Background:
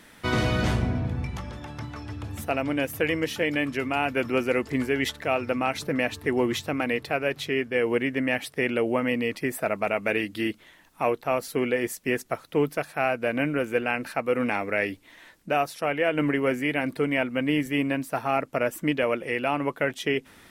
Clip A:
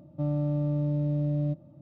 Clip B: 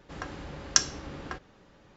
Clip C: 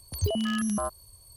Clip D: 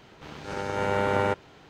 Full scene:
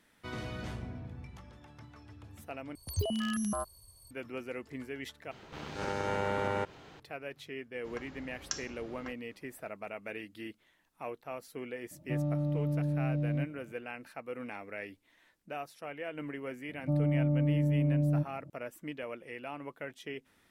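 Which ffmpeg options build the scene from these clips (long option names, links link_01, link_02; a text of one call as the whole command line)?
ffmpeg -i bed.wav -i cue0.wav -i cue1.wav -i cue2.wav -i cue3.wav -filter_complex "[1:a]asplit=2[link_01][link_02];[0:a]volume=-16dB[link_03];[4:a]acompressor=threshold=-28dB:ratio=6:attack=15:release=85:knee=6:detection=rms[link_04];[2:a]alimiter=level_in=6.5dB:limit=-1dB:release=50:level=0:latency=1[link_05];[link_02]lowpass=1000[link_06];[link_03]asplit=3[link_07][link_08][link_09];[link_07]atrim=end=2.754[link_10];[3:a]atrim=end=1.36,asetpts=PTS-STARTPTS,volume=-5dB[link_11];[link_08]atrim=start=4.106:end=5.314[link_12];[link_04]atrim=end=1.69,asetpts=PTS-STARTPTS,volume=-1dB[link_13];[link_09]atrim=start=6.996[link_14];[link_05]atrim=end=1.96,asetpts=PTS-STARTPTS,volume=-16.5dB,afade=type=in:duration=0.004:curve=hsin,afade=type=out:start_time=1.956:duration=0.004:curve=hsin,adelay=7750[link_15];[link_01]atrim=end=1.81,asetpts=PTS-STARTPTS,volume=-4dB,afade=type=in:duration=0.004:curve=hsin,afade=type=out:start_time=1.806:duration=0.004:curve=hsin,adelay=11910[link_16];[link_06]atrim=end=1.81,asetpts=PTS-STARTPTS,volume=-0.5dB,afade=type=in:duration=0.004:curve=hsin,afade=type=out:start_time=1.806:duration=0.004:curve=hsin,adelay=16690[link_17];[link_10][link_11]acrossfade=duration=0.004:curve1=hsin:curve2=hsin[link_18];[link_18][link_12]acrossfade=duration=0.004:curve1=hsin:curve2=hsin[link_19];[link_19][link_13]acrossfade=duration=0.004:curve1=hsin:curve2=hsin[link_20];[link_20][link_14]acrossfade=duration=0.004:curve1=hsin:curve2=hsin[link_21];[link_21][link_15][link_16][link_17]amix=inputs=4:normalize=0" out.wav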